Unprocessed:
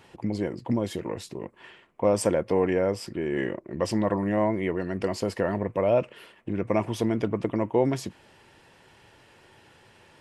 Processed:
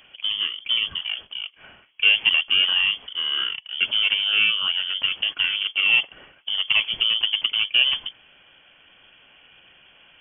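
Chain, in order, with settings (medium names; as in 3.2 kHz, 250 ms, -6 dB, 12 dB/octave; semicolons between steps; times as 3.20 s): peaking EQ 620 Hz +3.5 dB 2 oct; in parallel at -11 dB: decimation with a swept rate 36×, swing 100% 0.39 Hz; on the sum: frequency inversion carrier 3.3 kHz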